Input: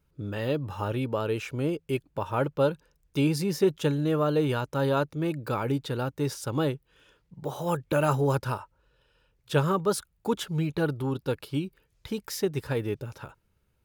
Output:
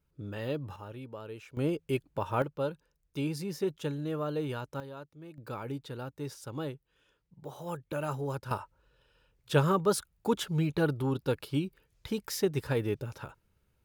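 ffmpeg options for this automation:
ffmpeg -i in.wav -af "asetnsamples=nb_out_samples=441:pad=0,asendcmd='0.76 volume volume -14.5dB;1.57 volume volume -2dB;2.42 volume volume -8.5dB;4.8 volume volume -19.5dB;5.38 volume volume -10dB;8.51 volume volume -1dB',volume=-6dB" out.wav

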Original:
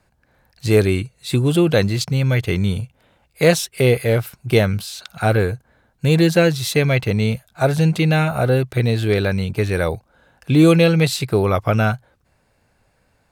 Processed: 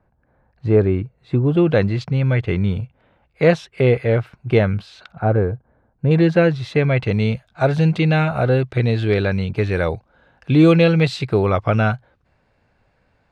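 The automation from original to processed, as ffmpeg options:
ffmpeg -i in.wav -af "asetnsamples=nb_out_samples=441:pad=0,asendcmd='1.57 lowpass f 2300;5.12 lowpass f 1000;6.11 lowpass f 2200;7.02 lowpass f 3700',lowpass=1200" out.wav

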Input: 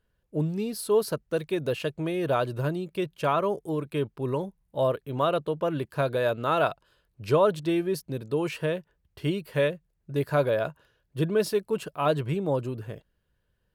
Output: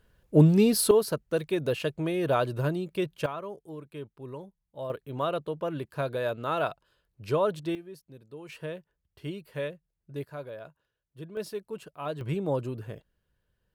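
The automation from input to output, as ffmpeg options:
ffmpeg -i in.wav -af "asetnsamples=nb_out_samples=441:pad=0,asendcmd='0.91 volume volume 0dB;3.26 volume volume -12dB;4.9 volume volume -4.5dB;7.75 volume volume -17dB;8.49 volume volume -9dB;10.25 volume volume -16dB;11.37 volume volume -10dB;12.21 volume volume -2dB',volume=9.5dB" out.wav

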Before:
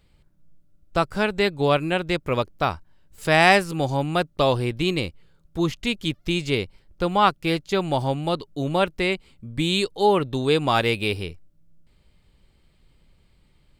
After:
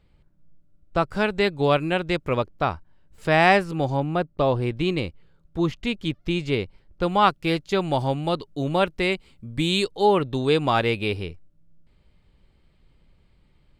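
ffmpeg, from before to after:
ffmpeg -i in.wav -af "asetnsamples=nb_out_samples=441:pad=0,asendcmd='1.08 lowpass f 5300;2.35 lowpass f 2300;4 lowpass f 1100;4.62 lowpass f 2500;7.03 lowpass f 6600;9.03 lowpass f 12000;9.88 lowpass f 5100;10.7 lowpass f 2900',lowpass=frequency=2200:poles=1" out.wav

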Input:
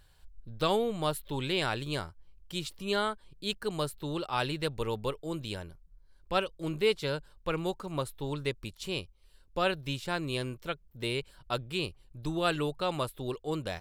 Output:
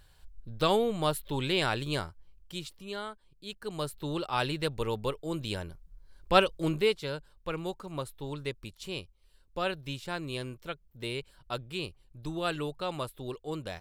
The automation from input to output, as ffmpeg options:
ffmpeg -i in.wav -af "volume=18dB,afade=type=out:start_time=2:duration=0.91:silence=0.298538,afade=type=in:start_time=3.51:duration=0.54:silence=0.334965,afade=type=in:start_time=5.23:duration=1.28:silence=0.473151,afade=type=out:start_time=6.51:duration=0.45:silence=0.298538" out.wav

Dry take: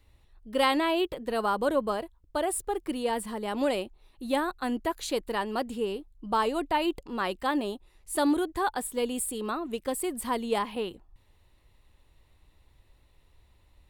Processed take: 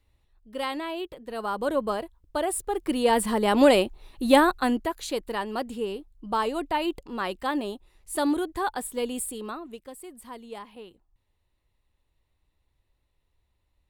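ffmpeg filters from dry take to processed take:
ffmpeg -i in.wav -af "volume=10dB,afade=type=in:start_time=1.27:duration=0.61:silence=0.398107,afade=type=in:start_time=2.69:duration=0.65:silence=0.375837,afade=type=out:start_time=4.44:duration=0.46:silence=0.316228,afade=type=out:start_time=9.18:duration=0.71:silence=0.251189" out.wav

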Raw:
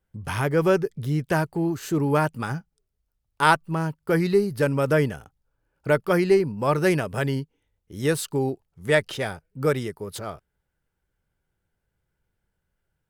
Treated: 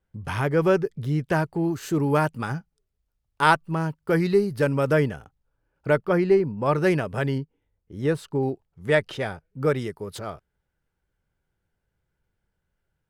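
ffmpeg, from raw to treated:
ffmpeg -i in.wav -af "asetnsamples=nb_out_samples=441:pad=0,asendcmd='1.64 lowpass f 11000;2.29 lowpass f 6500;5 lowpass f 3800;5.98 lowpass f 1600;6.66 lowpass f 3400;7.38 lowpass f 1300;8.43 lowpass f 3100;9.79 lowpass f 6000',lowpass=frequency=4400:poles=1" out.wav

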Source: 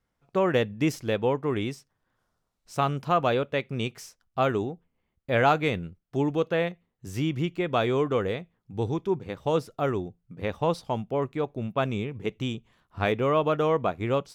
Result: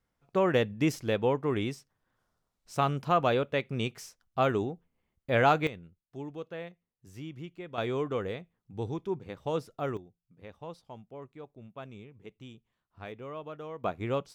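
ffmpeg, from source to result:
ffmpeg -i in.wav -af "asetnsamples=nb_out_samples=441:pad=0,asendcmd='5.67 volume volume -14.5dB;7.78 volume volume -6.5dB;9.97 volume volume -17.5dB;13.84 volume volume -5dB',volume=-2dB" out.wav

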